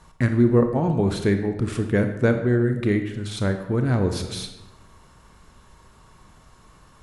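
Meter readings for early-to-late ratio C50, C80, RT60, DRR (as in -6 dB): 7.5 dB, 10.0 dB, 1.0 s, 6.0 dB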